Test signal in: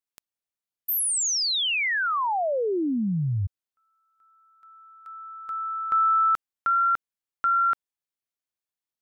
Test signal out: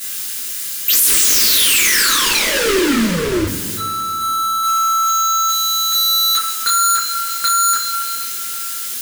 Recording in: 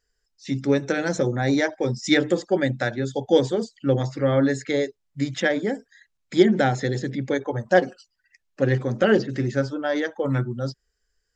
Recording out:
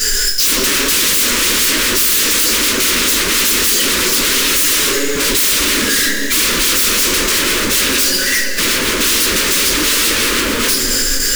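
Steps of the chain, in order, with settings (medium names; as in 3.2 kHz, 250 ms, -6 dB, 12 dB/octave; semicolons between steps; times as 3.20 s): power-law waveshaper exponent 0.35; treble shelf 2.8 kHz +11 dB; in parallel at -1 dB: compression 6:1, threshold -20 dBFS; on the sum: graphic EQ with 31 bands 125 Hz +8 dB, 800 Hz +9 dB, 1.6 kHz +6 dB; two-slope reverb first 0.27 s, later 2.8 s, from -18 dB, DRR -7.5 dB; wavefolder -5 dBFS; static phaser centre 310 Hz, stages 4; de-hum 67.15 Hz, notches 36; trim -2.5 dB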